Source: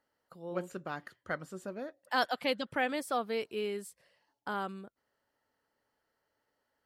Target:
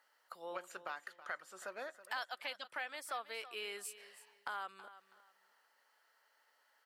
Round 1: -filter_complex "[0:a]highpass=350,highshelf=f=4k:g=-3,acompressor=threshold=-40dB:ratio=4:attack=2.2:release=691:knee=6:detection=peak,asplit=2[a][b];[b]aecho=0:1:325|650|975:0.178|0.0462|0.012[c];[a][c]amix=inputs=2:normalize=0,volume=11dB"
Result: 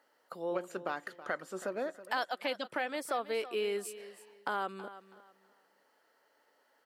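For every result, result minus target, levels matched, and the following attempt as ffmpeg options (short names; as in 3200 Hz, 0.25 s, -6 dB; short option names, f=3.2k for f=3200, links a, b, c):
250 Hz band +10.5 dB; compressor: peak gain reduction -5 dB
-filter_complex "[0:a]highpass=1k,highshelf=f=4k:g=-3,acompressor=threshold=-40dB:ratio=4:attack=2.2:release=691:knee=6:detection=peak,asplit=2[a][b];[b]aecho=0:1:325|650|975:0.178|0.0462|0.012[c];[a][c]amix=inputs=2:normalize=0,volume=11dB"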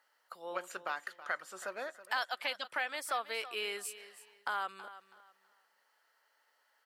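compressor: peak gain reduction -7 dB
-filter_complex "[0:a]highpass=1k,highshelf=f=4k:g=-3,acompressor=threshold=-49dB:ratio=4:attack=2.2:release=691:knee=6:detection=peak,asplit=2[a][b];[b]aecho=0:1:325|650|975:0.178|0.0462|0.012[c];[a][c]amix=inputs=2:normalize=0,volume=11dB"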